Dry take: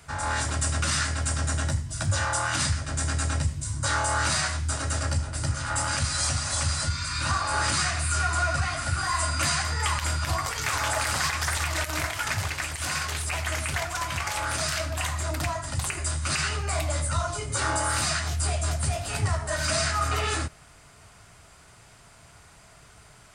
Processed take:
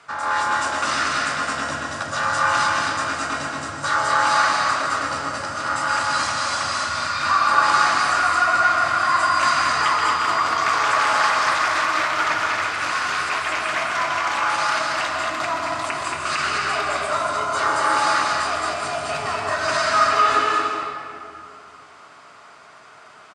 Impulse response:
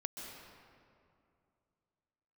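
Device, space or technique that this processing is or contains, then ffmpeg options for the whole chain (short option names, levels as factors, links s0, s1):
station announcement: -filter_complex "[0:a]highpass=310,lowpass=4900,equalizer=f=1200:t=o:w=0.54:g=8,aecho=1:1:157.4|227.4:0.282|0.631[s0];[1:a]atrim=start_sample=2205[s1];[s0][s1]afir=irnorm=-1:irlink=0,volume=1.88"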